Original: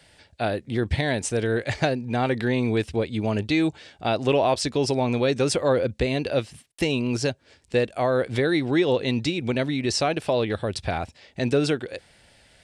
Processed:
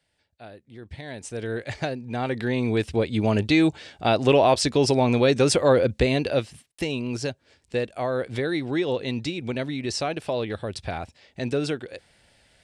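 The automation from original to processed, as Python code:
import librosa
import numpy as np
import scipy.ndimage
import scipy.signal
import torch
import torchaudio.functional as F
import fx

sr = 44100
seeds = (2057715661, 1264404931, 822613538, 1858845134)

y = fx.gain(x, sr, db=fx.line((0.79, -18.0), (1.49, -5.5), (1.99, -5.5), (3.19, 3.0), (6.08, 3.0), (6.85, -4.0)))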